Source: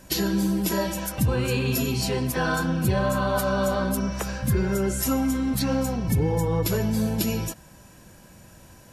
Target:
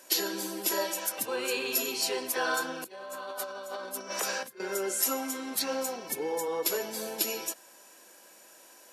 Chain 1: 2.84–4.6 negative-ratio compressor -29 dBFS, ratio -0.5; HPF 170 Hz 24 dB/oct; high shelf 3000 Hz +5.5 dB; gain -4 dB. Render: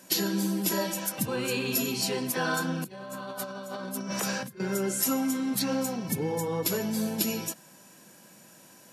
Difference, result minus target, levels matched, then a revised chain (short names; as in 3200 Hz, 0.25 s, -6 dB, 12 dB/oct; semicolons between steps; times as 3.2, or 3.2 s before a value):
125 Hz band +19.0 dB
2.84–4.6 negative-ratio compressor -29 dBFS, ratio -0.5; HPF 350 Hz 24 dB/oct; high shelf 3000 Hz +5.5 dB; gain -4 dB